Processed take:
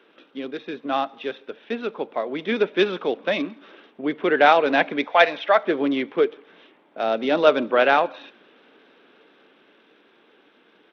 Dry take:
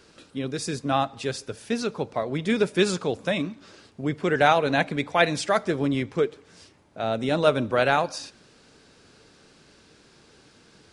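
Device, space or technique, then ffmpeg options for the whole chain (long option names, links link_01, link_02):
Bluetooth headset: -filter_complex "[0:a]asettb=1/sr,asplit=3[link_01][link_02][link_03];[link_01]atrim=end=5.044[link_04];[link_02]atrim=start=5.04:end=5.65,asetpts=PTS-STARTPTS,afade=type=in:duration=0.004:curve=qsin,afade=type=out:start_time=0.606:duration=0.004:curve=qsin,lowshelf=frequency=450:width_type=q:width=1.5:gain=-8[link_05];[link_03]atrim=start=5.646[link_06];[link_04][link_05]acrossfade=duration=0.004:curve1=hsin:curve2=qsin[link_07];[link_07][link_06]acrossfade=duration=0.004:curve1=qsin:curve2=hsin,highpass=frequency=250:width=0.5412,highpass=frequency=250:width=1.3066,dynaudnorm=framelen=310:gausssize=17:maxgain=11.5dB,aresample=8000,aresample=44100" -ar 32000 -c:a sbc -b:a 64k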